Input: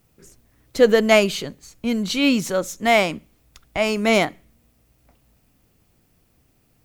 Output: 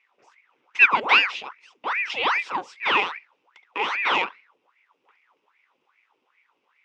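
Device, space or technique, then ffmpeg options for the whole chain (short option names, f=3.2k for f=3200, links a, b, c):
voice changer toy: -af "aeval=exprs='val(0)*sin(2*PI*1200*n/s+1200*0.85/2.5*sin(2*PI*2.5*n/s))':c=same,highpass=510,equalizer=f=650:t=q:w=4:g=-10,equalizer=f=1k:t=q:w=4:g=3,equalizer=f=1.7k:t=q:w=4:g=-7,equalizer=f=2.6k:t=q:w=4:g=6,equalizer=f=4.3k:t=q:w=4:g=-10,lowpass=f=4.5k:w=0.5412,lowpass=f=4.5k:w=1.3066"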